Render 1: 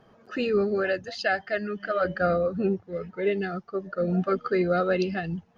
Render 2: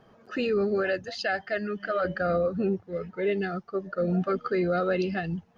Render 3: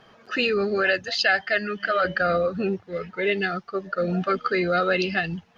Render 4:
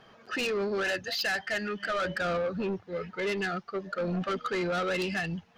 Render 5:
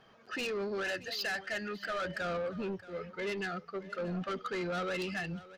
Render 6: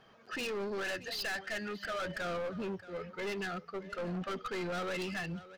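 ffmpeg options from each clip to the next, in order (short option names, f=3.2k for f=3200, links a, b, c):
-af "alimiter=limit=-18.5dB:level=0:latency=1:release=21"
-af "equalizer=f=3.2k:w=0.37:g=12.5"
-af "asoftclip=type=tanh:threshold=-23.5dB,volume=-2.5dB"
-af "aecho=1:1:628:0.133,volume=-5.5dB"
-af "aeval=exprs='clip(val(0),-1,0.0141)':c=same"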